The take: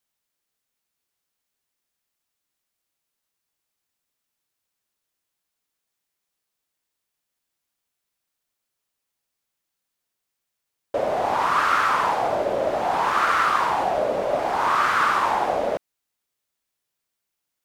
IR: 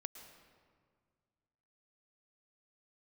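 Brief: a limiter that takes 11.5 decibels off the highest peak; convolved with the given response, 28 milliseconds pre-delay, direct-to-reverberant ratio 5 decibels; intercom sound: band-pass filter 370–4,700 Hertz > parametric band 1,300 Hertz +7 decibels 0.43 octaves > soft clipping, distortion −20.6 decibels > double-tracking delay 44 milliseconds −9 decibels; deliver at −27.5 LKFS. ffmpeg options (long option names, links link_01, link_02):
-filter_complex "[0:a]alimiter=limit=-19dB:level=0:latency=1,asplit=2[link_01][link_02];[1:a]atrim=start_sample=2205,adelay=28[link_03];[link_02][link_03]afir=irnorm=-1:irlink=0,volume=-1.5dB[link_04];[link_01][link_04]amix=inputs=2:normalize=0,highpass=370,lowpass=4700,equalizer=frequency=1300:width_type=o:width=0.43:gain=7,asoftclip=threshold=-15dB,asplit=2[link_05][link_06];[link_06]adelay=44,volume=-9dB[link_07];[link_05][link_07]amix=inputs=2:normalize=0,volume=-3.5dB"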